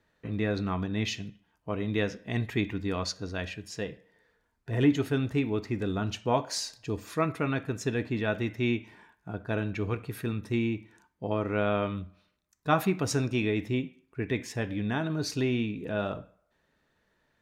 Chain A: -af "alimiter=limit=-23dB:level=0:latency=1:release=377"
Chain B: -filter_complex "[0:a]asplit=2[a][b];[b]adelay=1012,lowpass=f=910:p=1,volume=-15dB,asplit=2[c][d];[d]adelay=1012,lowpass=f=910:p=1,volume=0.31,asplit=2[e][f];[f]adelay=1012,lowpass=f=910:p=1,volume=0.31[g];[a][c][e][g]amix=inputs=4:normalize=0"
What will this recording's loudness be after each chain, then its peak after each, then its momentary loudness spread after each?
-35.5, -31.0 LUFS; -23.0, -11.5 dBFS; 8, 16 LU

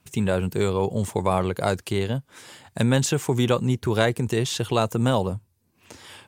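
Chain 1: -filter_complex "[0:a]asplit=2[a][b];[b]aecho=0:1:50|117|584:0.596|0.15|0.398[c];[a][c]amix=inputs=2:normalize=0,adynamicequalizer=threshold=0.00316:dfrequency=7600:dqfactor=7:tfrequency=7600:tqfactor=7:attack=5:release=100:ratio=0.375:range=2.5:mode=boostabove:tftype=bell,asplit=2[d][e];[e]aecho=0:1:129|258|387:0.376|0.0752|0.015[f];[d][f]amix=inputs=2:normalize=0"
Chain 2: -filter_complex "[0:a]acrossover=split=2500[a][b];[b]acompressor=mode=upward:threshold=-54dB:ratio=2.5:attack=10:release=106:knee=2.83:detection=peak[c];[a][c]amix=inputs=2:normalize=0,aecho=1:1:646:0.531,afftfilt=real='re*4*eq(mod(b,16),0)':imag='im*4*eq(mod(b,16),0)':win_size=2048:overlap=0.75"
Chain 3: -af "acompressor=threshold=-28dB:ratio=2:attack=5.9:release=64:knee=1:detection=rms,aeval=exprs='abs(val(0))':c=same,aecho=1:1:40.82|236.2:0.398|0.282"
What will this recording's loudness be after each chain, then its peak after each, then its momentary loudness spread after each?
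-21.5, -27.5, -32.5 LUFS; -4.5, -8.5, -12.0 dBFS; 11, 11, 13 LU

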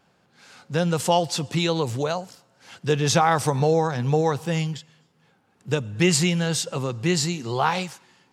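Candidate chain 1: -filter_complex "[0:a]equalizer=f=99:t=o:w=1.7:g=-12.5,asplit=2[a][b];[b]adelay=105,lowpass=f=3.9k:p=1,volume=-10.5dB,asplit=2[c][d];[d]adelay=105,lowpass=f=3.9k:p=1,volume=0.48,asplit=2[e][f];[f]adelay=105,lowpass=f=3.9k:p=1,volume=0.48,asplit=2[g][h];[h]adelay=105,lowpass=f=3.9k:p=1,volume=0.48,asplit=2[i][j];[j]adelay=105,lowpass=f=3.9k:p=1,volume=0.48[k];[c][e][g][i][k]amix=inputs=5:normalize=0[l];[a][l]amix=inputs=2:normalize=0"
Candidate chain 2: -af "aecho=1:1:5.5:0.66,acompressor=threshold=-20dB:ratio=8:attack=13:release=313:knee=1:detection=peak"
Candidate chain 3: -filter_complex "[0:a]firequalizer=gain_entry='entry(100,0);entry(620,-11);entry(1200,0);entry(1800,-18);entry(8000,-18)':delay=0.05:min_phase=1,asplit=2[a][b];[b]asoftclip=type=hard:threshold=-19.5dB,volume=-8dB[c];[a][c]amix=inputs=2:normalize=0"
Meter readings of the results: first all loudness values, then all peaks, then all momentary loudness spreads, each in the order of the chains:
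-24.5, -25.5, -25.5 LUFS; -5.0, -8.5, -10.0 dBFS; 11, 7, 9 LU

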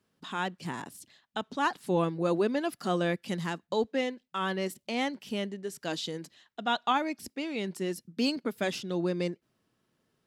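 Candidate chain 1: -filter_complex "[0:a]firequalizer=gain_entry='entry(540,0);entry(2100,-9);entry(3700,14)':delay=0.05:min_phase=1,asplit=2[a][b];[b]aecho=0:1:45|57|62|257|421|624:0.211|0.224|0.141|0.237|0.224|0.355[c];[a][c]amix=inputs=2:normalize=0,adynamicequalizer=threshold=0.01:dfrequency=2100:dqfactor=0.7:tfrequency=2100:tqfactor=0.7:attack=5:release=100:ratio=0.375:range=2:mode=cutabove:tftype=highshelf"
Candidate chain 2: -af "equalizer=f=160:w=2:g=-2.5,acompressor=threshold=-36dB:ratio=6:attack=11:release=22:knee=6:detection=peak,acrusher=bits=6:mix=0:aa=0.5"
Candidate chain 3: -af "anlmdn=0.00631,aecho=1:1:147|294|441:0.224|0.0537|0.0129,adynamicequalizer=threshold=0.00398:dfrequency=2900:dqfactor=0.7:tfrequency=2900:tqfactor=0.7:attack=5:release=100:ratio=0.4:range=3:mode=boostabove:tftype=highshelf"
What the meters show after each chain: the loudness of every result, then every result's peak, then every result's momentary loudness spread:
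-29.0, -38.0, -31.0 LUFS; -10.0, -23.0, -15.0 dBFS; 9, 5, 10 LU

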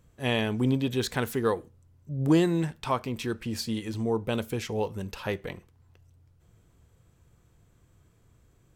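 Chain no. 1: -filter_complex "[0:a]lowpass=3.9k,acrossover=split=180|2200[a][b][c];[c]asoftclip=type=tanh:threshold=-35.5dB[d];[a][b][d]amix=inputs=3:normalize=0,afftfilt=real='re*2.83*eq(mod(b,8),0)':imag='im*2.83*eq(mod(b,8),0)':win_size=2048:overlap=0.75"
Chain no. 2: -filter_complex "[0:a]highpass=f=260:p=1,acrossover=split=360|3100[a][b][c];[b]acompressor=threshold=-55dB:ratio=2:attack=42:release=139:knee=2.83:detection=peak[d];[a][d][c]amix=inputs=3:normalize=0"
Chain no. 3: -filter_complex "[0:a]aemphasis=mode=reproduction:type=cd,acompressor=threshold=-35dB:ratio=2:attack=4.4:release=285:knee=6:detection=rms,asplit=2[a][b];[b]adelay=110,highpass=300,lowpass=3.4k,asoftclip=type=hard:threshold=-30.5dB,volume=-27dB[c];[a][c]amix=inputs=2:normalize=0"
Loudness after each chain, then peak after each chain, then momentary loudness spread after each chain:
-30.5, -34.5, -36.5 LUFS; -7.5, -17.0, -21.5 dBFS; 17, 11, 7 LU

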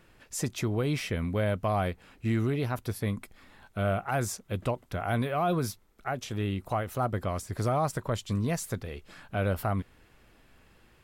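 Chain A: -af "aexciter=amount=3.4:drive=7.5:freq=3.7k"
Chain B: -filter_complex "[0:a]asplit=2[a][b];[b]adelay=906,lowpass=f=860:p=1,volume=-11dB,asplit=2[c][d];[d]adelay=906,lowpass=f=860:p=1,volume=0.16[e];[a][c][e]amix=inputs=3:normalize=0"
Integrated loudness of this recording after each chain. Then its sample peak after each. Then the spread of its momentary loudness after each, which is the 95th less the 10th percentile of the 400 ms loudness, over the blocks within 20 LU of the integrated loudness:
-28.0, -31.0 LUFS; -9.5, -17.5 dBFS; 11, 13 LU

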